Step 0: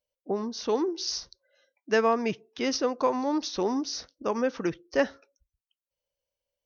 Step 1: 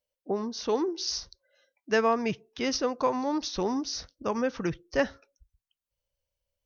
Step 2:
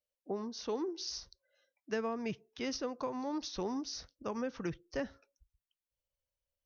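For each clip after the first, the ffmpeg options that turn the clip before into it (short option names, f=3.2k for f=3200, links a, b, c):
-af "asubboost=boost=4:cutoff=150"
-filter_complex "[0:a]acrossover=split=390[a][b];[b]acompressor=threshold=-29dB:ratio=6[c];[a][c]amix=inputs=2:normalize=0,volume=-7.5dB"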